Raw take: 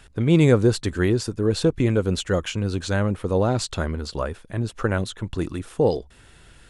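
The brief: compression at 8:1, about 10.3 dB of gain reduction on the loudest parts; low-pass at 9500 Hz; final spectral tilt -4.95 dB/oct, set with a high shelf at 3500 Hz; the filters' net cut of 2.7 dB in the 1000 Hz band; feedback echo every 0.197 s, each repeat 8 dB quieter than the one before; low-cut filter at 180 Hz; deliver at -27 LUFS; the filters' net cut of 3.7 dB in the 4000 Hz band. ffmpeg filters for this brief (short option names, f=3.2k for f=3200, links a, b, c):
-af "highpass=180,lowpass=9.5k,equalizer=f=1k:t=o:g=-4,highshelf=f=3.5k:g=5.5,equalizer=f=4k:t=o:g=-8,acompressor=threshold=-24dB:ratio=8,aecho=1:1:197|394|591|788|985:0.398|0.159|0.0637|0.0255|0.0102,volume=3.5dB"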